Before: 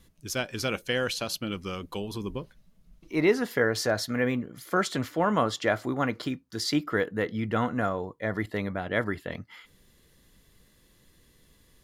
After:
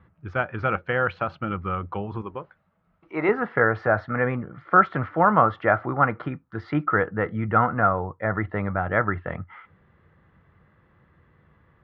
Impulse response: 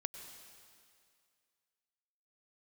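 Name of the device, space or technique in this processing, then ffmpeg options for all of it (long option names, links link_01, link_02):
bass cabinet: -filter_complex "[0:a]asettb=1/sr,asplit=3[link_01][link_02][link_03];[link_01]atrim=end=2.214[link_04];[link_02]atrim=start=2.21:end=3.29,asetpts=PTS-STARTPTS,afade=type=in:duration=0.004:curve=qsin,afade=type=out:start_time=1.076:duration=0.004:curve=qsin,bass=frequency=250:gain=-13,treble=frequency=4000:gain=11[link_05];[link_03]atrim=start=3.286[link_06];[link_04][link_05]acrossfade=duration=0.004:curve1=hsin:curve2=qsin[link_07];[link_07][link_06]acrossfade=duration=0.004:curve1=qsin:curve2=hsin,highpass=73,equalizer=frequency=89:width_type=q:width=4:gain=9,equalizer=frequency=150:width_type=q:width=4:gain=4,equalizer=frequency=260:width_type=q:width=4:gain=-7,equalizer=frequency=420:width_type=q:width=4:gain=-3,equalizer=frequency=810:width_type=q:width=4:gain=6,equalizer=frequency=1300:width_type=q:width=4:gain=10,lowpass=frequency=2000:width=0.5412,lowpass=frequency=2000:width=1.3066,volume=4dB"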